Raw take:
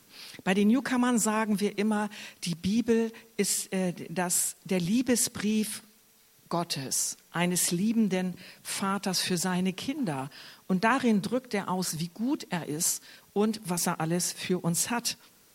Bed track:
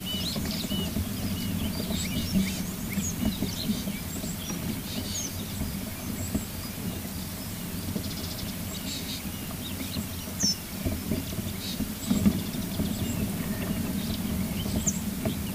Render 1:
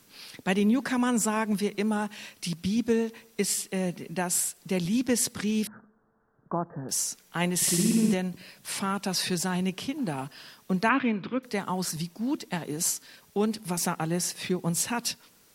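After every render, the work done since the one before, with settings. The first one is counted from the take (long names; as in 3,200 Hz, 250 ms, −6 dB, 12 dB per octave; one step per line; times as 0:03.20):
0:05.67–0:06.89: Butterworth low-pass 1,600 Hz 72 dB per octave
0:07.56–0:08.14: flutter between parallel walls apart 10.1 metres, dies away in 1.5 s
0:10.89–0:11.43: loudspeaker in its box 130–3,200 Hz, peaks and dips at 190 Hz −9 dB, 280 Hz +6 dB, 460 Hz −5 dB, 760 Hz −6 dB, 1,300 Hz +5 dB, 2,400 Hz +7 dB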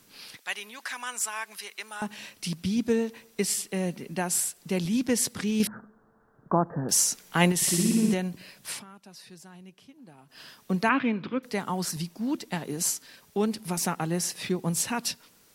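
0:00.37–0:02.02: high-pass filter 1,300 Hz
0:05.60–0:07.52: clip gain +6 dB
0:08.70–0:10.41: duck −20 dB, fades 0.14 s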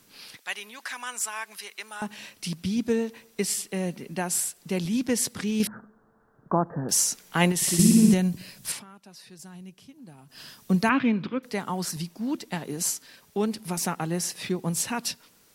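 0:07.79–0:08.72: bass and treble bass +10 dB, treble +7 dB
0:09.39–0:11.27: bass and treble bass +7 dB, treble +6 dB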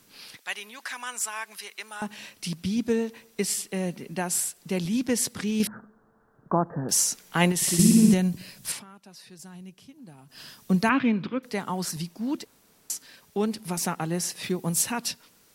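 0:12.45–0:12.90: fill with room tone
0:14.43–0:14.92: high-shelf EQ 9,600 Hz +9 dB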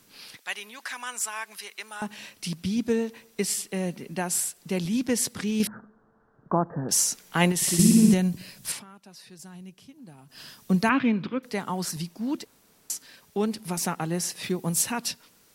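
0:05.70–0:06.91: high-frequency loss of the air 92 metres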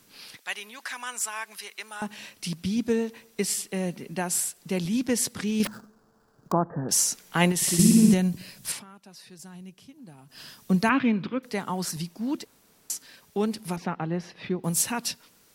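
0:05.65–0:06.52: sample-rate reduction 6,200 Hz, jitter 20%
0:13.76–0:14.64: high-frequency loss of the air 310 metres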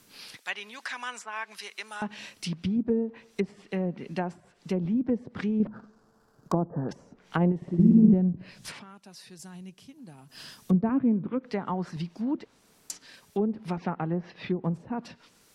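treble cut that deepens with the level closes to 520 Hz, closed at −22.5 dBFS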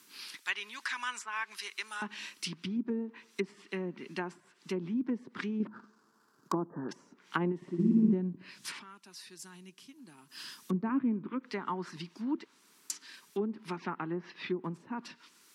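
high-pass filter 320 Hz 12 dB per octave
flat-topped bell 600 Hz −12 dB 1 octave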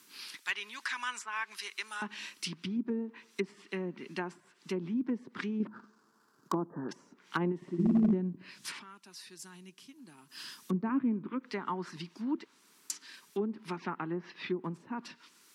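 gain into a clipping stage and back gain 20.5 dB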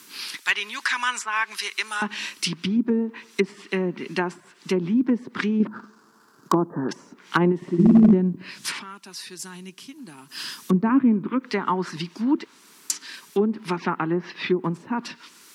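level +12 dB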